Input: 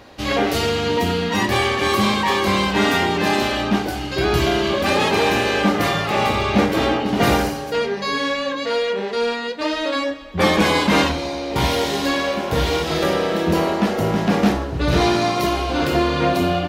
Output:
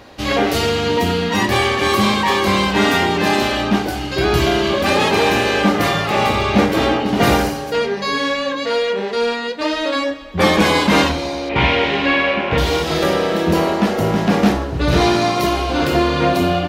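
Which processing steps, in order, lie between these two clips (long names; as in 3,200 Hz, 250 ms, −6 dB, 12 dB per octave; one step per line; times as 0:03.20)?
0:11.49–0:12.58: low-pass with resonance 2,500 Hz, resonance Q 2.9
level +2.5 dB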